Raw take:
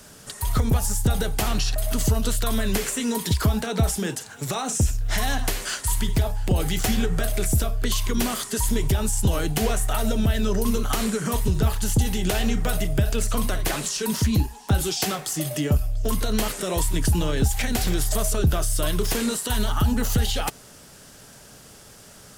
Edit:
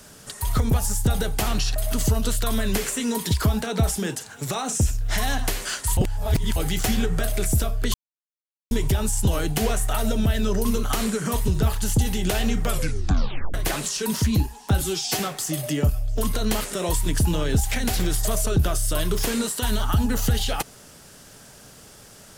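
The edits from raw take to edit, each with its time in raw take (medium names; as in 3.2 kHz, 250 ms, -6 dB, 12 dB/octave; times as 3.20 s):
5.97–6.56 s: reverse
7.94–8.71 s: mute
12.64 s: tape stop 0.90 s
14.82–15.07 s: stretch 1.5×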